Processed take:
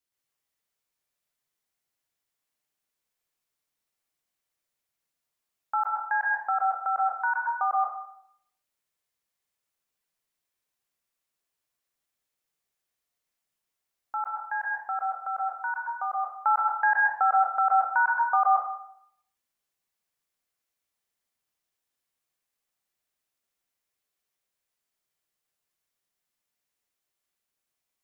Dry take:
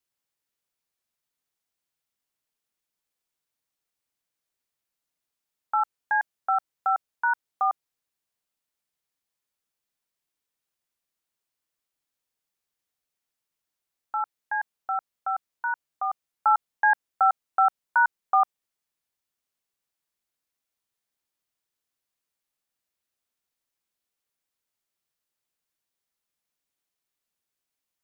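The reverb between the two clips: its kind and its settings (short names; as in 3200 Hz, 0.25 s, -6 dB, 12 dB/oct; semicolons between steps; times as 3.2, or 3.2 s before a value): plate-style reverb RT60 0.69 s, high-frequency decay 0.8×, pre-delay 0.11 s, DRR -3 dB; gain -3 dB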